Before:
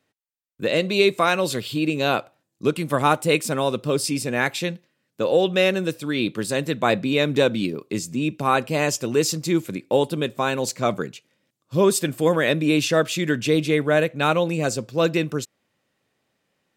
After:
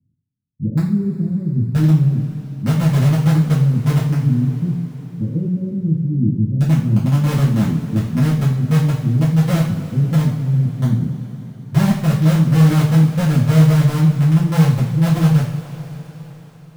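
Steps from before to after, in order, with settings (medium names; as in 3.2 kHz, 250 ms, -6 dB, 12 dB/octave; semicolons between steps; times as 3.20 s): inverse Chebyshev low-pass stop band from 1 kHz, stop band 80 dB; bass shelf 100 Hz -7 dB; in parallel at -8 dB: integer overflow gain 29.5 dB; on the sum: two-slope reverb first 0.47 s, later 4.8 s, from -18 dB, DRR -8.5 dB; trim +9 dB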